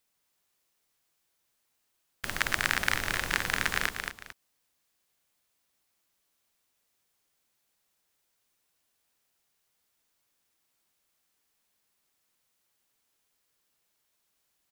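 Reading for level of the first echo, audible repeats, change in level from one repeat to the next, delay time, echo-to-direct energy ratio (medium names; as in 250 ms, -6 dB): -6.0 dB, 2, -10.5 dB, 224 ms, -5.5 dB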